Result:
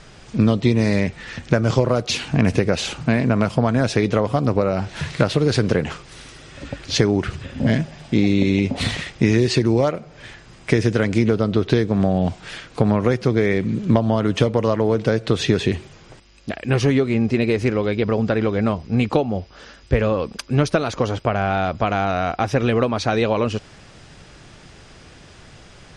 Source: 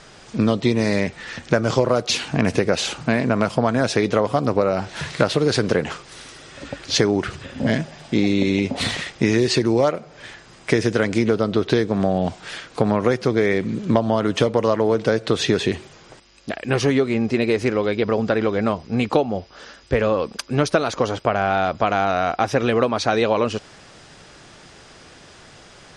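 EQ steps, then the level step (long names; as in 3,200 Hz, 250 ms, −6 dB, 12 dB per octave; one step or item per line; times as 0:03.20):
low-shelf EQ 180 Hz +11.5 dB
parametric band 2,500 Hz +2.5 dB 0.77 octaves
−2.5 dB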